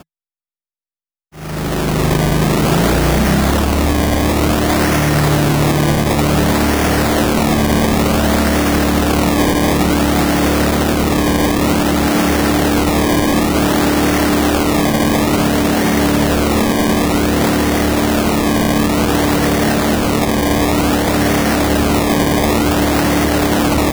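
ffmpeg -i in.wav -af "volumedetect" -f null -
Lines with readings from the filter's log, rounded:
mean_volume: -13.7 dB
max_volume: -1.5 dB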